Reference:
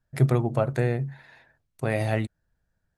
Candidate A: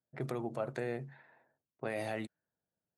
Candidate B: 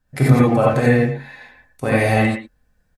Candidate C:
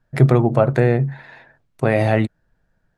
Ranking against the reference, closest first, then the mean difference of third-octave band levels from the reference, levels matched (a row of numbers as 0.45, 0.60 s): C, A, B; 2.0, 4.0, 6.0 dB